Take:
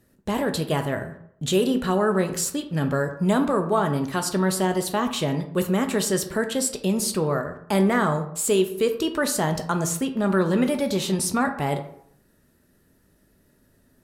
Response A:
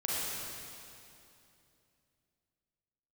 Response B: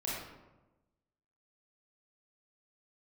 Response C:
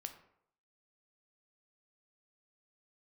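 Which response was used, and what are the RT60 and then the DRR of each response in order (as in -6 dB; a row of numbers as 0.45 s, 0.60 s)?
C; 2.8 s, 1.1 s, 0.70 s; -7.5 dB, -7.0 dB, 6.5 dB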